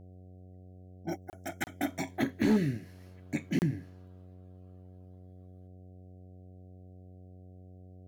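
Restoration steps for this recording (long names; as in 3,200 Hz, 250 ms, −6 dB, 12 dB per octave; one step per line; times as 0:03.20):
clipped peaks rebuilt −19.5 dBFS
hum removal 91.9 Hz, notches 8
repair the gap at 0:01.30/0:01.64/0:03.59, 29 ms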